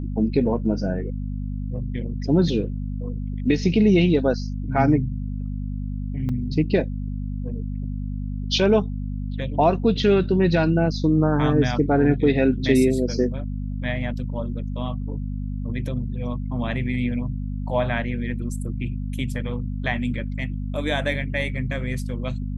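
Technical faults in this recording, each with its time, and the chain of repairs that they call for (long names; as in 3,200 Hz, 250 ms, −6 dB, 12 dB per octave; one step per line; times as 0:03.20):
mains hum 50 Hz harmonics 5 −28 dBFS
0:06.29: drop-out 3.7 ms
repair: hum removal 50 Hz, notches 5
repair the gap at 0:06.29, 3.7 ms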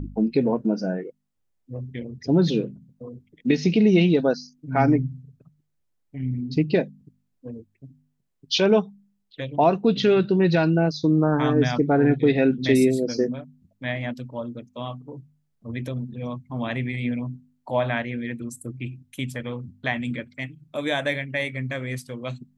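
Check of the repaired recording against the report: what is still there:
none of them is left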